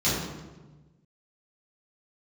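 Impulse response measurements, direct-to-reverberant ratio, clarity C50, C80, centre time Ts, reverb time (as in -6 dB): -11.5 dB, -0.5 dB, 2.5 dB, 77 ms, 1.2 s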